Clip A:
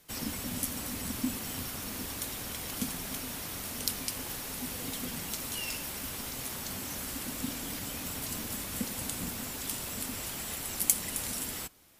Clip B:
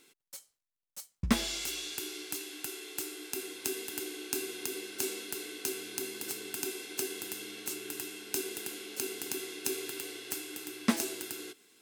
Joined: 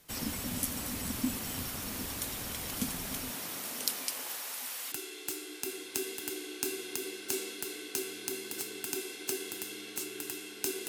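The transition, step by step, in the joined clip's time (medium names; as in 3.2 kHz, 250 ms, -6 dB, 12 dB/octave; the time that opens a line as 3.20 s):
clip A
3.30–4.92 s: high-pass 160 Hz -> 1.1 kHz
4.92 s: go over to clip B from 2.62 s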